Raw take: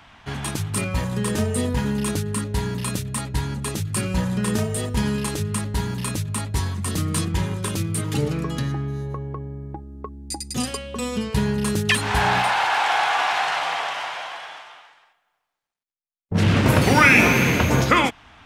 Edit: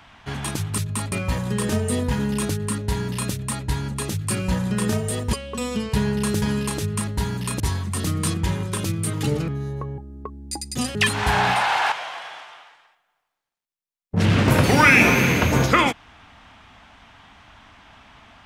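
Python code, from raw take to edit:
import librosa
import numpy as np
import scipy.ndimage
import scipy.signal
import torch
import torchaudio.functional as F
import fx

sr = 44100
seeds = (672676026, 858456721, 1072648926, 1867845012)

y = fx.edit(x, sr, fx.move(start_s=6.17, length_s=0.34, to_s=0.78),
    fx.cut(start_s=8.39, length_s=0.42),
    fx.cut(start_s=9.31, length_s=0.46),
    fx.move(start_s=10.74, length_s=1.09, to_s=4.99),
    fx.cut(start_s=12.8, length_s=1.3), tone=tone)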